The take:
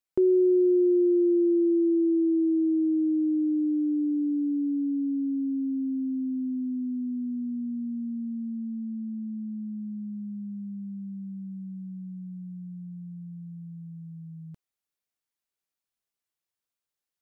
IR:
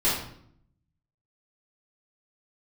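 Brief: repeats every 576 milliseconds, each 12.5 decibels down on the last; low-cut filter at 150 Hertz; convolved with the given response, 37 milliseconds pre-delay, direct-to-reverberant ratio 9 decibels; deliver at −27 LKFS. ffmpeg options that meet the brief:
-filter_complex "[0:a]highpass=150,aecho=1:1:576|1152|1728:0.237|0.0569|0.0137,asplit=2[link_01][link_02];[1:a]atrim=start_sample=2205,adelay=37[link_03];[link_02][link_03]afir=irnorm=-1:irlink=0,volume=-22.5dB[link_04];[link_01][link_04]amix=inputs=2:normalize=0,volume=-1dB"

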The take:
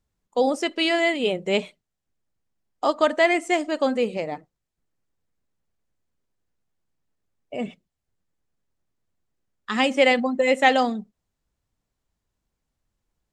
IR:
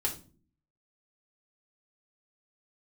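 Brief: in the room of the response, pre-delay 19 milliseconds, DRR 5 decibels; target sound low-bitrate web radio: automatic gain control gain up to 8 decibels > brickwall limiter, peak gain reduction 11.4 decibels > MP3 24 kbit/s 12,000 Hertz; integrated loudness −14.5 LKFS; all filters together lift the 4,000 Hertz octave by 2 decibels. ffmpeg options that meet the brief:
-filter_complex "[0:a]equalizer=frequency=4000:width_type=o:gain=3,asplit=2[link_01][link_02];[1:a]atrim=start_sample=2205,adelay=19[link_03];[link_02][link_03]afir=irnorm=-1:irlink=0,volume=-9.5dB[link_04];[link_01][link_04]amix=inputs=2:normalize=0,dynaudnorm=maxgain=8dB,alimiter=limit=-13.5dB:level=0:latency=1,volume=10dB" -ar 12000 -c:a libmp3lame -b:a 24k

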